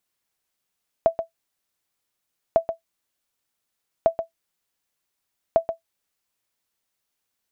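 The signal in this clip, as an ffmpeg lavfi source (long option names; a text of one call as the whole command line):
ffmpeg -f lavfi -i "aevalsrc='0.422*(sin(2*PI*661*mod(t,1.5))*exp(-6.91*mod(t,1.5)/0.12)+0.335*sin(2*PI*661*max(mod(t,1.5)-0.13,0))*exp(-6.91*max(mod(t,1.5)-0.13,0)/0.12))':duration=6:sample_rate=44100" out.wav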